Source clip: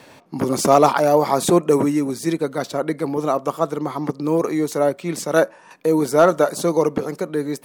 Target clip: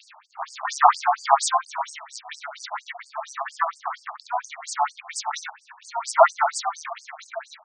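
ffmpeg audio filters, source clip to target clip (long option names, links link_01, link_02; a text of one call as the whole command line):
ffmpeg -i in.wav -filter_complex "[0:a]aecho=1:1:27|68:0.178|0.398,asplit=4[link_01][link_02][link_03][link_04];[link_02]asetrate=22050,aresample=44100,atempo=2,volume=-16dB[link_05];[link_03]asetrate=58866,aresample=44100,atempo=0.749154,volume=-18dB[link_06];[link_04]asetrate=66075,aresample=44100,atempo=0.66742,volume=-8dB[link_07];[link_01][link_05][link_06][link_07]amix=inputs=4:normalize=0,afftfilt=real='re*between(b*sr/1024,890*pow(6600/890,0.5+0.5*sin(2*PI*4.3*pts/sr))/1.41,890*pow(6600/890,0.5+0.5*sin(2*PI*4.3*pts/sr))*1.41)':imag='im*between(b*sr/1024,890*pow(6600/890,0.5+0.5*sin(2*PI*4.3*pts/sr))/1.41,890*pow(6600/890,0.5+0.5*sin(2*PI*4.3*pts/sr))*1.41)':win_size=1024:overlap=0.75,volume=3dB" out.wav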